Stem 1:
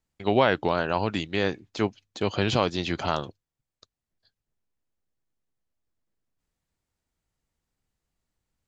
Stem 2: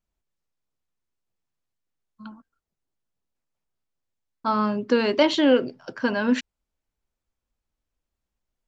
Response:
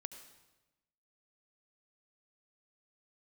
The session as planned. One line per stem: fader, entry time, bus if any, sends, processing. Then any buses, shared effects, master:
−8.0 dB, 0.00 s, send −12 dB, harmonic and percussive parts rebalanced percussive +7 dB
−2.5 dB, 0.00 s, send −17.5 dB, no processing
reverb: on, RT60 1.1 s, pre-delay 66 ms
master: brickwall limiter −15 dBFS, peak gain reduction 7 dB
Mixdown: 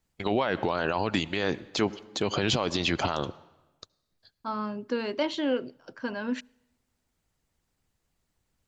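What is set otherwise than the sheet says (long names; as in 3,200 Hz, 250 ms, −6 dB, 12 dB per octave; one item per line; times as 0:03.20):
stem 1 −8.0 dB → 0.0 dB
stem 2 −2.5 dB → −10.0 dB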